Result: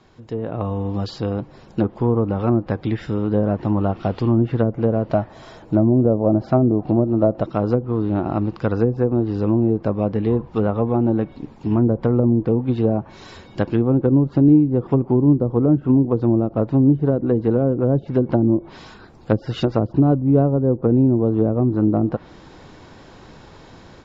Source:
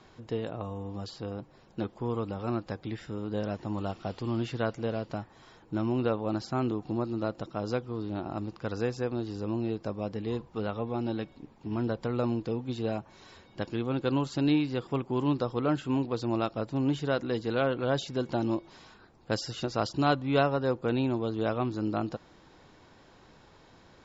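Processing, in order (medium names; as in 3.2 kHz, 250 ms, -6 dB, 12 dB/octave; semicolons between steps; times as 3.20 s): low-pass that closes with the level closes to 400 Hz, closed at -25 dBFS; 5.04–7.45 s: peaking EQ 630 Hz +10 dB 0.32 oct; level rider gain up to 11 dB; bass shelf 440 Hz +4 dB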